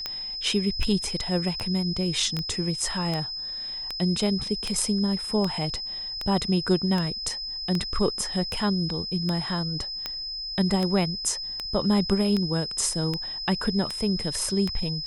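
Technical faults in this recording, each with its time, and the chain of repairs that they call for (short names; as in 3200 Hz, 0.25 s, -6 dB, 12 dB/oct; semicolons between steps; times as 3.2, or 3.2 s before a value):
tick 78 rpm -14 dBFS
tone 5100 Hz -31 dBFS
2.39 pop -19 dBFS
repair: de-click; notch 5100 Hz, Q 30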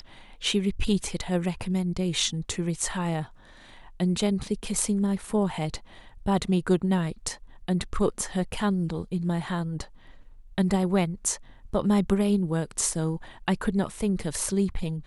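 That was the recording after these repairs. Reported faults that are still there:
none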